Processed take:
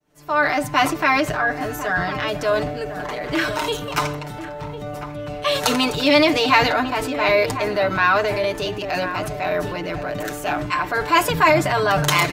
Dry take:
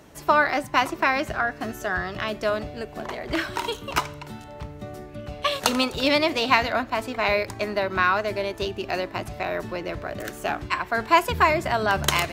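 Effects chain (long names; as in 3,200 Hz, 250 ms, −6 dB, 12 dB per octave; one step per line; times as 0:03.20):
fade in at the beginning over 0.72 s
comb filter 6.7 ms, depth 87%
slap from a distant wall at 180 metres, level −12 dB
transient designer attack −4 dB, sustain +5 dB
level +2.5 dB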